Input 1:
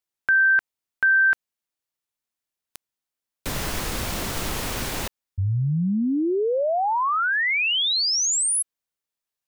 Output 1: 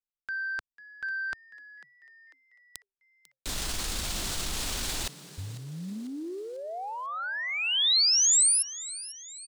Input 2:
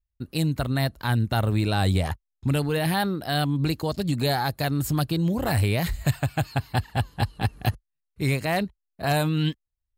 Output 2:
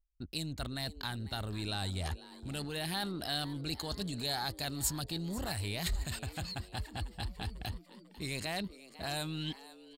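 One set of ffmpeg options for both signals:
ffmpeg -i in.wav -filter_complex "[0:a]acontrast=47,anlmdn=0.631,highshelf=frequency=3100:gain=-8,areverse,acompressor=threshold=-26dB:ratio=12:attack=4.6:release=39:knee=6:detection=rms,areverse,equalizer=frequency=125:width_type=o:width=1:gain=-11,equalizer=frequency=250:width_type=o:width=1:gain=-4,equalizer=frequency=500:width_type=o:width=1:gain=-8,equalizer=frequency=1000:width_type=o:width=1:gain=-5,equalizer=frequency=2000:width_type=o:width=1:gain=-4,equalizer=frequency=4000:width_type=o:width=1:gain=6,equalizer=frequency=8000:width_type=o:width=1:gain=8,asplit=2[link_01][link_02];[link_02]asplit=4[link_03][link_04][link_05][link_06];[link_03]adelay=496,afreqshift=130,volume=-17dB[link_07];[link_04]adelay=992,afreqshift=260,volume=-23dB[link_08];[link_05]adelay=1488,afreqshift=390,volume=-29dB[link_09];[link_06]adelay=1984,afreqshift=520,volume=-35.1dB[link_10];[link_07][link_08][link_09][link_10]amix=inputs=4:normalize=0[link_11];[link_01][link_11]amix=inputs=2:normalize=0,volume=-1.5dB" out.wav

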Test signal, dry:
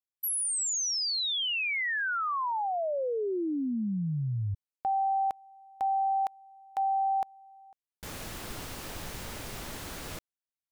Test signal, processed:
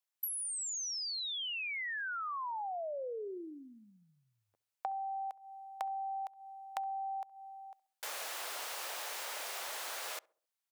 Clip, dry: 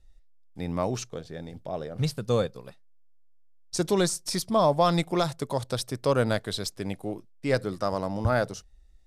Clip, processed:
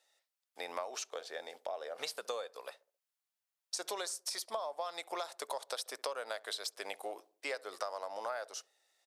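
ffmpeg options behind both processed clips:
ffmpeg -i in.wav -filter_complex "[0:a]highpass=frequency=560:width=0.5412,highpass=frequency=560:width=1.3066,acompressor=threshold=-43dB:ratio=10:attack=42:release=163:knee=6:detection=rms,asplit=2[link_01][link_02];[link_02]adelay=67,lowpass=frequency=870:poles=1,volume=-20dB,asplit=2[link_03][link_04];[link_04]adelay=67,lowpass=frequency=870:poles=1,volume=0.5,asplit=2[link_05][link_06];[link_06]adelay=67,lowpass=frequency=870:poles=1,volume=0.5,asplit=2[link_07][link_08];[link_08]adelay=67,lowpass=frequency=870:poles=1,volume=0.5[link_09];[link_01][link_03][link_05][link_07][link_09]amix=inputs=5:normalize=0,volume=4.5dB" out.wav

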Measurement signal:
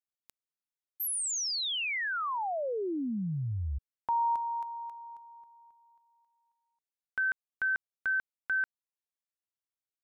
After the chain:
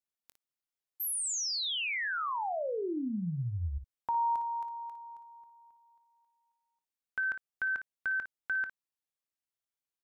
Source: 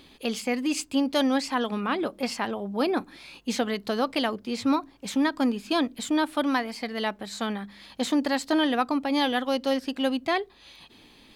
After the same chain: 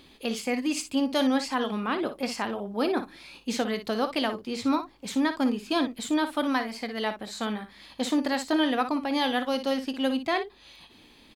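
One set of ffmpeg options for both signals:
ffmpeg -i in.wav -af "aecho=1:1:23|57:0.158|0.299,volume=-1.5dB" out.wav

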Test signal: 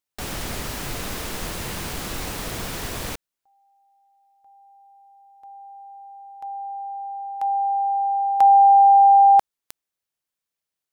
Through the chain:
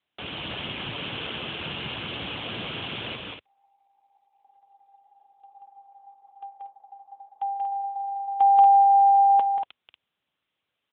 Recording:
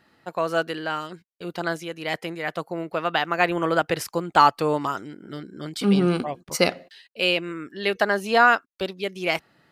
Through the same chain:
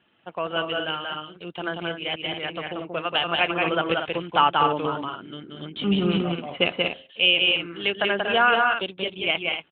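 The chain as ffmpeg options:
ffmpeg -i in.wav -af "lowpass=frequency=3100:width_type=q:width=3.7,bandreject=frequency=1900:width=7.2,aecho=1:1:183.7|236.2:0.708|0.398,volume=-4dB" -ar 8000 -c:a libopencore_amrnb -b:a 12200 out.amr

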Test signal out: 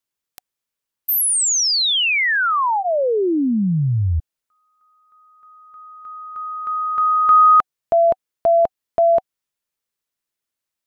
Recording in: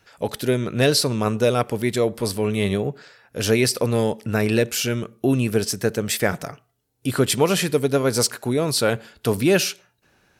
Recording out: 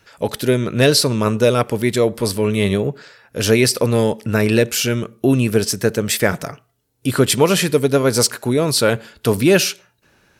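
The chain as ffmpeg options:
ffmpeg -i in.wav -af "bandreject=frequency=750:width=12,volume=4.5dB" out.wav

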